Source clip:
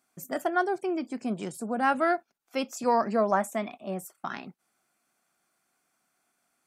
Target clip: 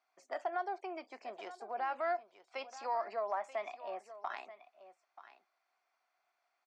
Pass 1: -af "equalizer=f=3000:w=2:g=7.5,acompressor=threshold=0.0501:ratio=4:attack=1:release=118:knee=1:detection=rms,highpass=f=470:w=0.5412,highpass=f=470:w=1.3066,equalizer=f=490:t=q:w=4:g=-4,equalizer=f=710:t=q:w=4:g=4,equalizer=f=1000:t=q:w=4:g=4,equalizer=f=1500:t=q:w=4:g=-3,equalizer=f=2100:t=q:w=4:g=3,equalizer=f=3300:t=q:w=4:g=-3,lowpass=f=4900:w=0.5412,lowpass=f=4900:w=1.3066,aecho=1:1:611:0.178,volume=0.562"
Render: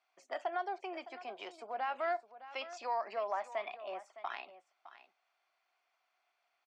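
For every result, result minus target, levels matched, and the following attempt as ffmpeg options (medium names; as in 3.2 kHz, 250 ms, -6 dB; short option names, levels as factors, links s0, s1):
echo 322 ms early; 4 kHz band +5.0 dB
-af "equalizer=f=3000:w=2:g=7.5,acompressor=threshold=0.0501:ratio=4:attack=1:release=118:knee=1:detection=rms,highpass=f=470:w=0.5412,highpass=f=470:w=1.3066,equalizer=f=490:t=q:w=4:g=-4,equalizer=f=710:t=q:w=4:g=4,equalizer=f=1000:t=q:w=4:g=4,equalizer=f=1500:t=q:w=4:g=-3,equalizer=f=2100:t=q:w=4:g=3,equalizer=f=3300:t=q:w=4:g=-3,lowpass=f=4900:w=0.5412,lowpass=f=4900:w=1.3066,aecho=1:1:933:0.178,volume=0.562"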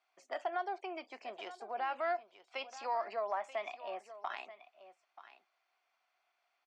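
4 kHz band +5.0 dB
-af "acompressor=threshold=0.0501:ratio=4:attack=1:release=118:knee=1:detection=rms,highpass=f=470:w=0.5412,highpass=f=470:w=1.3066,equalizer=f=490:t=q:w=4:g=-4,equalizer=f=710:t=q:w=4:g=4,equalizer=f=1000:t=q:w=4:g=4,equalizer=f=1500:t=q:w=4:g=-3,equalizer=f=2100:t=q:w=4:g=3,equalizer=f=3300:t=q:w=4:g=-3,lowpass=f=4900:w=0.5412,lowpass=f=4900:w=1.3066,aecho=1:1:933:0.178,volume=0.562"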